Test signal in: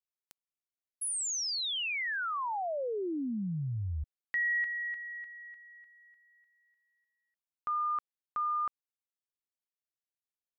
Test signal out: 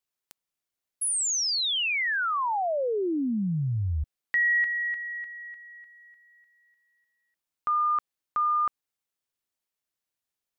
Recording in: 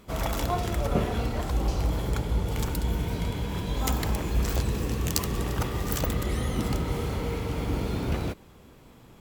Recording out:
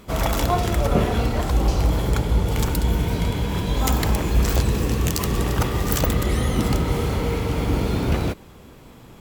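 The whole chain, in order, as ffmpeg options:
ffmpeg -i in.wav -af "alimiter=level_in=11.5dB:limit=-1dB:release=50:level=0:latency=1,volume=-4.5dB" out.wav

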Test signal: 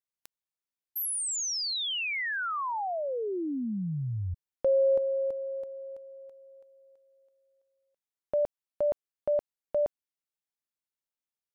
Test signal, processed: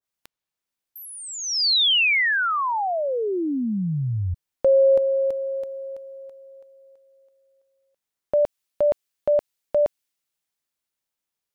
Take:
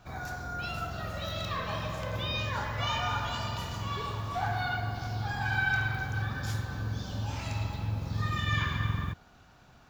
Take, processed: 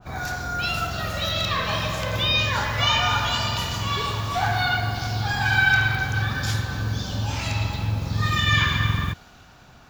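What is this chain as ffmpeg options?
ffmpeg -i in.wav -filter_complex "[0:a]acrossover=split=5400[link_01][link_02];[link_02]acompressor=threshold=-48dB:ratio=6:attack=2.4:release=686[link_03];[link_01][link_03]amix=inputs=2:normalize=0,adynamicequalizer=threshold=0.00447:dfrequency=1800:dqfactor=0.7:tfrequency=1800:tqfactor=0.7:attack=5:release=100:ratio=0.375:range=3.5:mode=boostabove:tftype=highshelf,volume=7.5dB" out.wav

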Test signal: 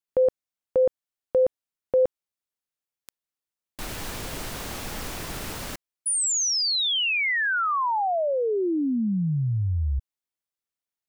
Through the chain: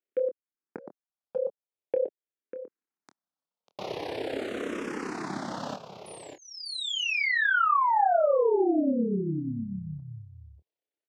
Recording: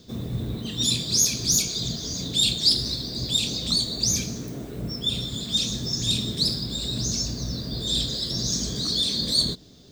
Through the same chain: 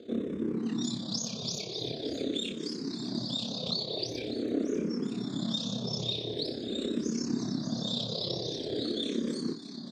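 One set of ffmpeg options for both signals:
ffmpeg -i in.wav -filter_complex "[0:a]equalizer=frequency=390:width_type=o:width=2.8:gain=13,acompressor=threshold=-17dB:ratio=16:attack=0.38:release=833:knee=1:detection=rms,tremolo=f=33:d=0.667,highpass=180,lowpass=4900,asplit=2[link_01][link_02];[link_02]adelay=26,volume=-10.5dB[link_03];[link_01][link_03]amix=inputs=2:normalize=0,asplit=2[link_04][link_05];[link_05]aecho=0:1:595:0.316[link_06];[link_04][link_06]amix=inputs=2:normalize=0,asplit=2[link_07][link_08];[link_08]afreqshift=-0.45[link_09];[link_07][link_09]amix=inputs=2:normalize=1" out.wav

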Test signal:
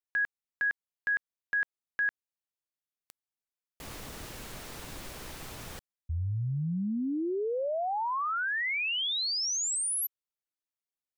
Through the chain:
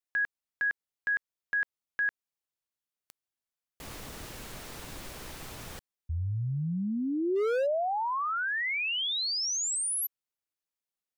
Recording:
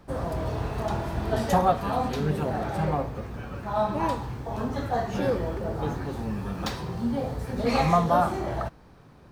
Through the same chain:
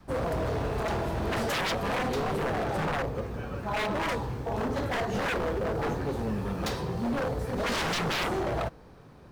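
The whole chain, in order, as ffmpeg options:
ffmpeg -i in.wav -af "adynamicequalizer=threshold=0.00708:dfrequency=470:dqfactor=2.2:tfrequency=470:tqfactor=2.2:attack=5:release=100:ratio=0.375:range=3.5:mode=boostabove:tftype=bell,aeval=exprs='0.0631*(abs(mod(val(0)/0.0631+3,4)-2)-1)':channel_layout=same" out.wav

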